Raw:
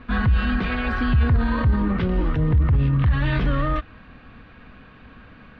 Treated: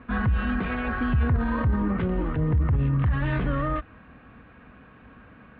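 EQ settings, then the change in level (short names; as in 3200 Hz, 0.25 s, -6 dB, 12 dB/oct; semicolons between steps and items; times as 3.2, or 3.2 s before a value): HPF 43 Hz; air absorption 460 m; low shelf 220 Hz -4.5 dB; 0.0 dB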